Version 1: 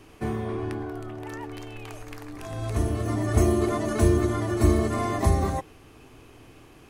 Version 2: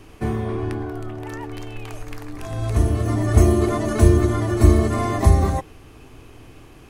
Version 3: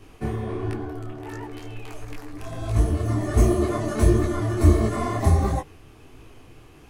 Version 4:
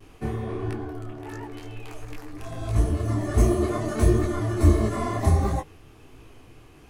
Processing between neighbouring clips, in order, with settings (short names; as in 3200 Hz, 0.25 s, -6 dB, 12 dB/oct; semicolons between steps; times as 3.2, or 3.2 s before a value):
low shelf 95 Hz +7.5 dB; gain +3.5 dB
detuned doubles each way 50 cents
vibrato 0.56 Hz 22 cents; gain -1.5 dB